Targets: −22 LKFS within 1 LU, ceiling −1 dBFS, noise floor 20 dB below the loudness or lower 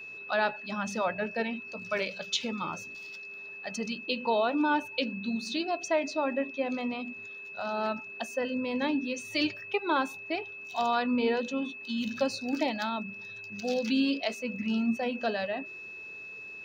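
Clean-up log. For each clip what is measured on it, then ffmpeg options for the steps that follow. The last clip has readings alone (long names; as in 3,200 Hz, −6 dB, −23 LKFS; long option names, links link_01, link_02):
interfering tone 2,600 Hz; level of the tone −41 dBFS; integrated loudness −31.5 LKFS; sample peak −14.5 dBFS; target loudness −22.0 LKFS
→ -af "bandreject=frequency=2600:width=30"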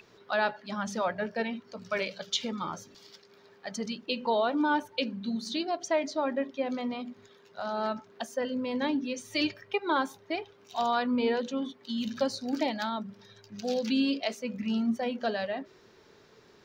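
interfering tone none found; integrated loudness −31.5 LKFS; sample peak −14.5 dBFS; target loudness −22.0 LKFS
→ -af "volume=9.5dB"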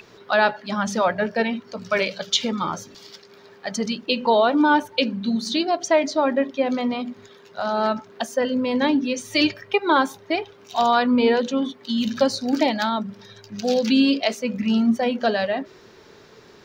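integrated loudness −22.0 LKFS; sample peak −5.0 dBFS; background noise floor −49 dBFS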